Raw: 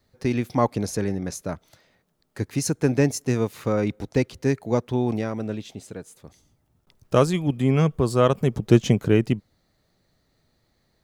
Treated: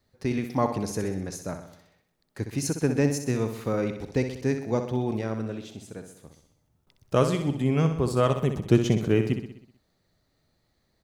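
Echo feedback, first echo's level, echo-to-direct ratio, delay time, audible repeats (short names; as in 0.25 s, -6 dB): 55%, -8.5 dB, -7.0 dB, 63 ms, 6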